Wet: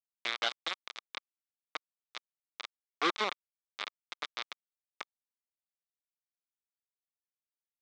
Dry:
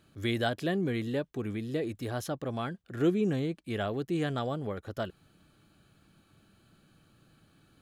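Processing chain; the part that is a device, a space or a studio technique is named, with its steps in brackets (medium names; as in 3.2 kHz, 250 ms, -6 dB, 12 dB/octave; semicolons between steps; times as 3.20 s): hand-held game console (bit crusher 4-bit; cabinet simulation 440–5500 Hz, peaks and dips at 1.2 kHz +8 dB, 2.2 kHz +7 dB, 3.6 kHz +9 dB); trim -5.5 dB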